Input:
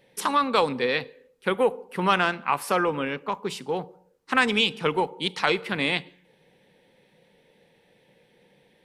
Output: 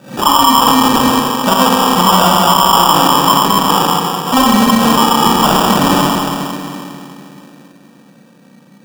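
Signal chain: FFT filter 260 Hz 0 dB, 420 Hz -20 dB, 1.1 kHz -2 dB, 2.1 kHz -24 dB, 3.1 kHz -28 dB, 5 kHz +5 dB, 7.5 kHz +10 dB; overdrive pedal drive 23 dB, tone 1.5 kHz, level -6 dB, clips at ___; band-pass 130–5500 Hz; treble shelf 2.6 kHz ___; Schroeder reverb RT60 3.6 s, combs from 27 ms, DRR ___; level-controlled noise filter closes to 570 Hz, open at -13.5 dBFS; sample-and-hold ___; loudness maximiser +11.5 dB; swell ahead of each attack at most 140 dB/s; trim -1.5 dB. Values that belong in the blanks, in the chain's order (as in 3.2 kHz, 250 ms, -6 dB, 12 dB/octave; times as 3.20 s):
-9 dBFS, +6.5 dB, -5 dB, 21×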